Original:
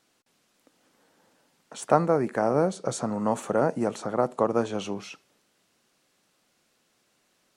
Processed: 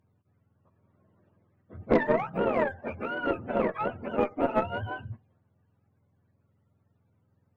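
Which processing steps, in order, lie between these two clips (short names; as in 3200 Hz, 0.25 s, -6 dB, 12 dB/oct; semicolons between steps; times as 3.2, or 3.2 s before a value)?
spectrum mirrored in octaves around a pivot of 550 Hz; added harmonics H 2 -16 dB, 6 -20 dB, 7 -33 dB, 8 -27 dB, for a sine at -9.5 dBFS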